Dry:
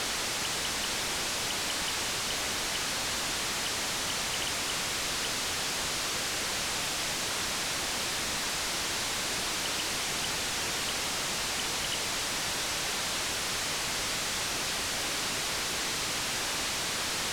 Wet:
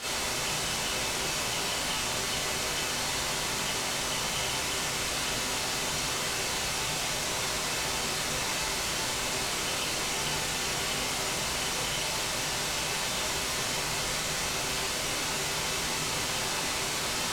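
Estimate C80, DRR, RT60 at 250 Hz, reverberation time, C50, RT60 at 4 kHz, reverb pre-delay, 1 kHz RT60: 7.0 dB, −10.5 dB, 0.70 s, 0.60 s, 0.5 dB, 0.45 s, 21 ms, 0.55 s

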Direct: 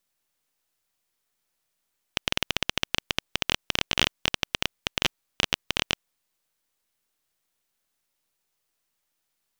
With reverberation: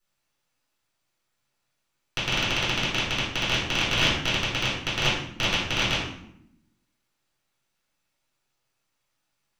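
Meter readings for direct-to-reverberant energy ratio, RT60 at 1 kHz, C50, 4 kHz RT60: −11.0 dB, 0.75 s, 2.5 dB, 0.50 s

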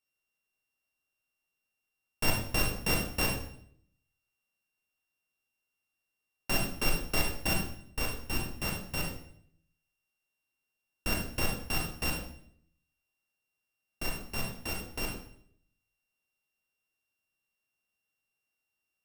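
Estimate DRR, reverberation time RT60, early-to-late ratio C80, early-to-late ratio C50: 0.0 dB, 0.65 s, 8.5 dB, 4.5 dB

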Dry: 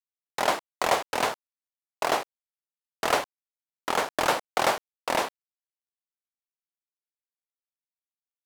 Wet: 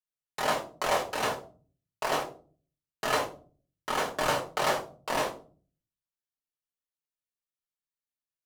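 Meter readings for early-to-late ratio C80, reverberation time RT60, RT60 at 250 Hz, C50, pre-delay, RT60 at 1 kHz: 16.5 dB, 0.40 s, 0.70 s, 11.0 dB, 5 ms, 0.35 s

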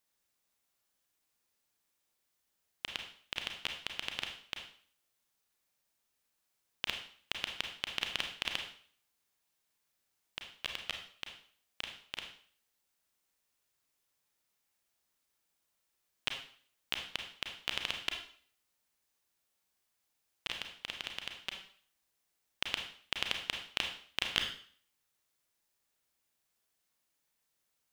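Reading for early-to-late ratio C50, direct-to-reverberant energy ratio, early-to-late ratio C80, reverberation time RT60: 6.5 dB, 3.0 dB, 10.0 dB, 0.50 s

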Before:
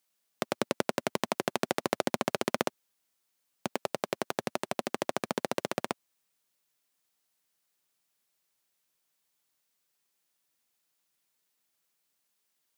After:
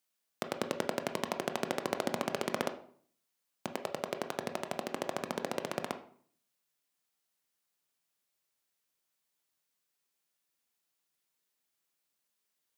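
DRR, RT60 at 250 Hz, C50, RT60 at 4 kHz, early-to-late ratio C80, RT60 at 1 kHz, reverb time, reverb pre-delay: 7.0 dB, 0.65 s, 12.0 dB, 0.40 s, 16.0 dB, 0.50 s, 0.55 s, 18 ms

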